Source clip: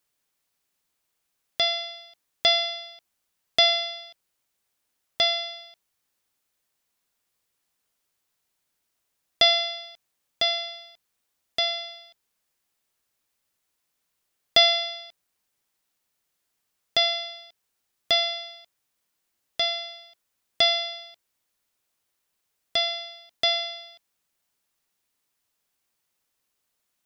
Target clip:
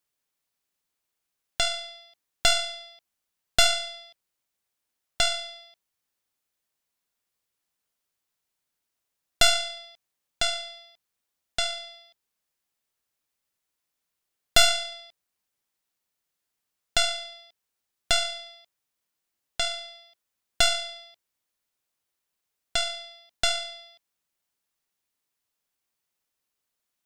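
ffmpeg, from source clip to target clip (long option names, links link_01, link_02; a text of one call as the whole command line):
ffmpeg -i in.wav -af "aeval=exprs='0.668*(cos(1*acos(clip(val(0)/0.668,-1,1)))-cos(1*PI/2))+0.0841*(cos(3*acos(clip(val(0)/0.668,-1,1)))-cos(3*PI/2))+0.211*(cos(4*acos(clip(val(0)/0.668,-1,1)))-cos(4*PI/2))+0.0237*(cos(8*acos(clip(val(0)/0.668,-1,1)))-cos(8*PI/2))':channel_layout=same,volume=-1dB" out.wav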